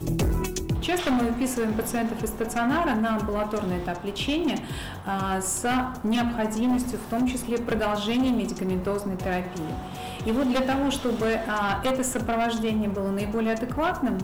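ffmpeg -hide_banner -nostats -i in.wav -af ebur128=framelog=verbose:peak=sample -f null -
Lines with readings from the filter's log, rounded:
Integrated loudness:
  I:         -26.3 LUFS
  Threshold: -36.3 LUFS
Loudness range:
  LRA:         1.5 LU
  Threshold: -46.4 LUFS
  LRA low:   -27.1 LUFS
  LRA high:  -25.6 LUFS
Sample peak:
  Peak:      -18.5 dBFS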